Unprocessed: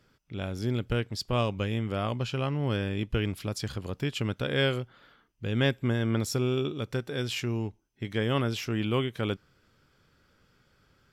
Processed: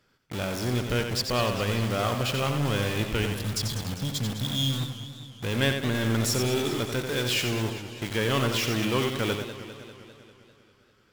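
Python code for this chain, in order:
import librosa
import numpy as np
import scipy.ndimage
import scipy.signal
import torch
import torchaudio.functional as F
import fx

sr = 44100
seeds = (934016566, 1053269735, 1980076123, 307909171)

p1 = fx.spec_erase(x, sr, start_s=3.27, length_s=2.09, low_hz=280.0, high_hz=3200.0)
p2 = fx.quant_companded(p1, sr, bits=2)
p3 = p1 + (p2 * 10.0 ** (-4.0 / 20.0))
p4 = fx.low_shelf(p3, sr, hz=390.0, db=-6.0)
p5 = p4 + fx.echo_single(p4, sr, ms=89, db=-6.5, dry=0)
y = fx.echo_warbled(p5, sr, ms=199, feedback_pct=64, rate_hz=2.8, cents=170, wet_db=-12.0)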